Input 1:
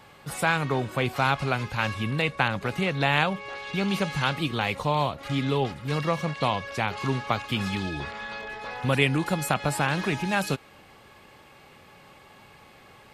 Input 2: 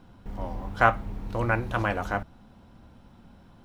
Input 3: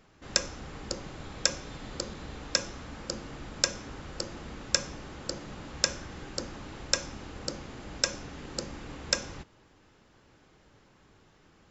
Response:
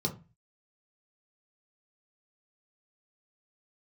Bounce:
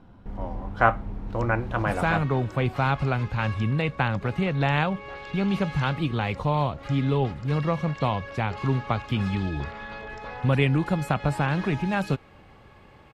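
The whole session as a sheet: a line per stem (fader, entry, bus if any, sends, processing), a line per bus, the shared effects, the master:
-0.5 dB, 1.60 s, no send, bass shelf 120 Hz +11.5 dB
+1.5 dB, 0.00 s, no send, none
-9.0 dB, 1.05 s, no send, compression, threshold -38 dBFS, peak gain reduction 18 dB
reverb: none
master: low-pass 2 kHz 6 dB/octave

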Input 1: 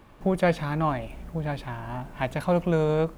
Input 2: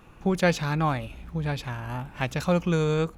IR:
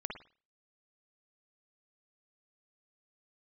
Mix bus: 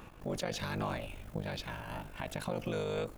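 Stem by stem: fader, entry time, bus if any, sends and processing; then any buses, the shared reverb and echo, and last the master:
-1.5 dB, 0.00 s, no send, treble shelf 6.7 kHz +7.5 dB; AM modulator 50 Hz, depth 85%
+1.5 dB, 0.00 s, polarity flipped, no send, slow attack 152 ms; auto duck -8 dB, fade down 0.50 s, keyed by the first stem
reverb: none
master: peak limiter -25.5 dBFS, peak gain reduction 11.5 dB

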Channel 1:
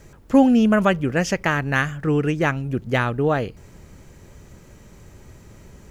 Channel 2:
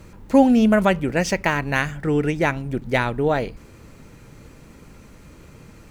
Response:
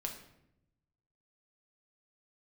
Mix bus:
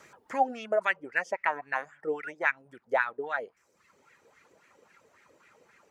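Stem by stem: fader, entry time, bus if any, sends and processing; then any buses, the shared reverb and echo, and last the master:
-3.5 dB, 0.00 s, no send, reverb removal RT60 0.85 s; compression 3:1, threshold -31 dBFS, peak gain reduction 16 dB; auto duck -10 dB, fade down 1.30 s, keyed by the second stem
+0.5 dB, 0.00 s, no send, reverb removal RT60 0.95 s; treble shelf 6.9 kHz +10.5 dB; wah-wah 3.7 Hz 460–2000 Hz, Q 3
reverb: none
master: frequency weighting A

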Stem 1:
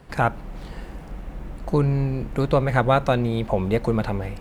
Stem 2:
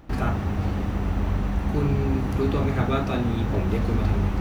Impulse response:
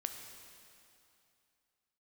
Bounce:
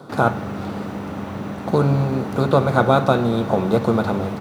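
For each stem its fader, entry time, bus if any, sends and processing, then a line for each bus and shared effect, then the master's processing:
-1.5 dB, 0.00 s, send -3 dB, spectral levelling over time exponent 0.6; Chebyshev band-stop 1.5–3.3 kHz, order 5; upward expansion 1.5:1, over -29 dBFS
0.0 dB, 0.8 ms, no send, none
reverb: on, RT60 2.7 s, pre-delay 6 ms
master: high-pass 120 Hz 24 dB/octave

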